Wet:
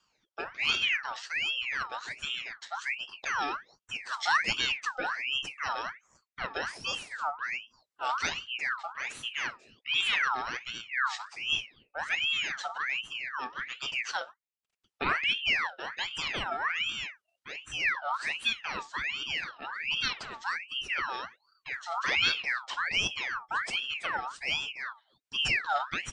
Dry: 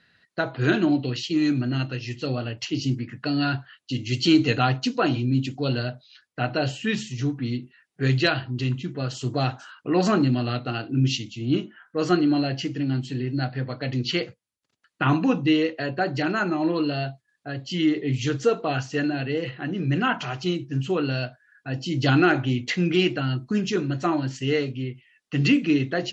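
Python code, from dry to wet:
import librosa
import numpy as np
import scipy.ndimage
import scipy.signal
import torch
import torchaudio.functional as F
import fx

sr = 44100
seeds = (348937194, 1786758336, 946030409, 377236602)

y = fx.rotary_switch(x, sr, hz=0.85, then_hz=6.3, switch_at_s=19.06)
y = fx.ring_lfo(y, sr, carrier_hz=2000.0, swing_pct=50, hz=1.3)
y = y * librosa.db_to_amplitude(-4.5)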